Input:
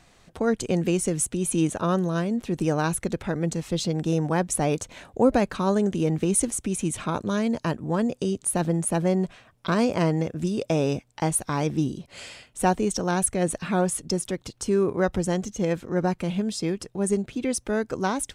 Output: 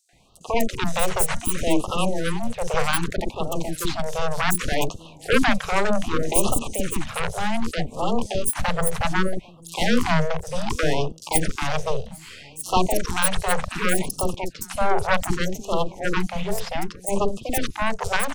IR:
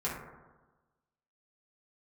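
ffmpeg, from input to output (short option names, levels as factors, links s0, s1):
-filter_complex "[0:a]asplit=2[s0][s1];[s1]aecho=0:1:797:0.0944[s2];[s0][s2]amix=inputs=2:normalize=0,aeval=exprs='0.422*(cos(1*acos(clip(val(0)/0.422,-1,1)))-cos(1*PI/2))+0.168*(cos(8*acos(clip(val(0)/0.422,-1,1)))-cos(8*PI/2))':c=same,acrossover=split=430|5600[s3][s4][s5];[s4]adelay=90[s6];[s3]adelay=130[s7];[s7][s6][s5]amix=inputs=3:normalize=0,afftfilt=real='re*(1-between(b*sr/1024,260*pow(1900/260,0.5+0.5*sin(2*PI*0.65*pts/sr))/1.41,260*pow(1900/260,0.5+0.5*sin(2*PI*0.65*pts/sr))*1.41))':imag='im*(1-between(b*sr/1024,260*pow(1900/260,0.5+0.5*sin(2*PI*0.65*pts/sr))/1.41,260*pow(1900/260,0.5+0.5*sin(2*PI*0.65*pts/sr))*1.41))':win_size=1024:overlap=0.75"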